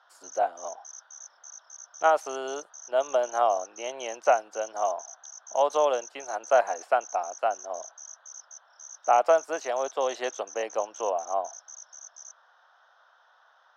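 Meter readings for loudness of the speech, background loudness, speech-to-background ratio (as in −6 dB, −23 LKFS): −27.5 LKFS, −44.0 LKFS, 16.5 dB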